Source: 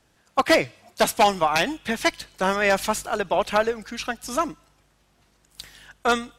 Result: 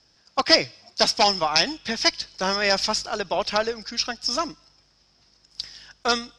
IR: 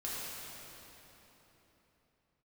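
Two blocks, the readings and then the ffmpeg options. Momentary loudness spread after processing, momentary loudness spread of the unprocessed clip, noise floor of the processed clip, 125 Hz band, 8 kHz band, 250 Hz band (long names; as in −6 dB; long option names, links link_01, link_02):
14 LU, 11 LU, −62 dBFS, −3.0 dB, +1.5 dB, −3.0 dB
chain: -af "lowpass=frequency=5200:width_type=q:width=12,volume=-3dB"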